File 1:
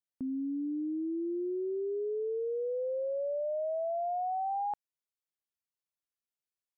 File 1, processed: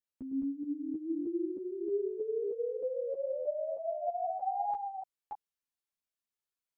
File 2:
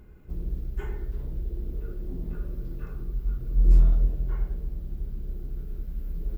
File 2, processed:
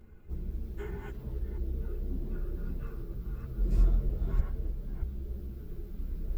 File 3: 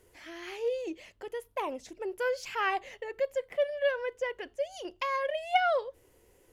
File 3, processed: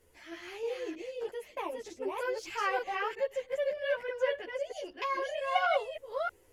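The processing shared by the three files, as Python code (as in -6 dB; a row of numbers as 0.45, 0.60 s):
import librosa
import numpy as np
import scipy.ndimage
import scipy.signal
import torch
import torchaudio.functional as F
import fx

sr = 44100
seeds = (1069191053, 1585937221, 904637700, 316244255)

y = fx.reverse_delay(x, sr, ms=314, wet_db=-2)
y = fx.ensemble(y, sr)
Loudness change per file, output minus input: -1.5, -6.5, -1.5 LU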